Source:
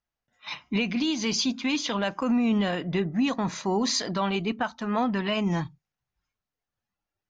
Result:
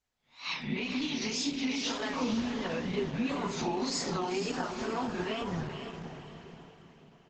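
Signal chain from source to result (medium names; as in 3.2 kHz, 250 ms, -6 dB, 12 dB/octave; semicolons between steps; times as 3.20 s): reverse spectral sustain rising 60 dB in 0.32 s; 5.00–5.50 s: bass shelf 250 Hz +4.5 dB; reverberation, pre-delay 3 ms, DRR -1.5 dB; compression 12:1, threshold -29 dBFS, peak gain reduction 15 dB; 1.26–2.04 s: peaking EQ 170 Hz -6 dB 0.58 oct; comb 7.5 ms, depth 47%; wow and flutter 140 cents; echo that smears into a reverb 474 ms, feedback 43%, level -7 dB; crackling interface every 0.30 s, samples 64, zero, from 0.62 s; trim -1.5 dB; Opus 12 kbps 48 kHz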